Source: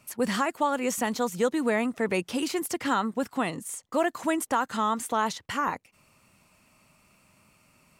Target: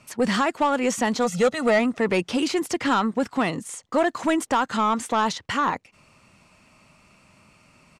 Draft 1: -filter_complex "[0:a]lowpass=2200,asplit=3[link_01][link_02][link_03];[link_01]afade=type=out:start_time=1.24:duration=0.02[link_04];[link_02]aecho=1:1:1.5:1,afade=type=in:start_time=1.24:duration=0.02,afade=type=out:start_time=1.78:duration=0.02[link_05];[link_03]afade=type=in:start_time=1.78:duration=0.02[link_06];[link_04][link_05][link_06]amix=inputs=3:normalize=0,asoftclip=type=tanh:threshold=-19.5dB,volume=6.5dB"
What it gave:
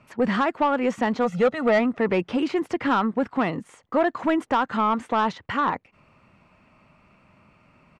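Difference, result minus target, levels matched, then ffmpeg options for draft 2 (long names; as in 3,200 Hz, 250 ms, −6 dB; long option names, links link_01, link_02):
8,000 Hz band −17.0 dB
-filter_complex "[0:a]lowpass=6800,asplit=3[link_01][link_02][link_03];[link_01]afade=type=out:start_time=1.24:duration=0.02[link_04];[link_02]aecho=1:1:1.5:1,afade=type=in:start_time=1.24:duration=0.02,afade=type=out:start_time=1.78:duration=0.02[link_05];[link_03]afade=type=in:start_time=1.78:duration=0.02[link_06];[link_04][link_05][link_06]amix=inputs=3:normalize=0,asoftclip=type=tanh:threshold=-19.5dB,volume=6.5dB"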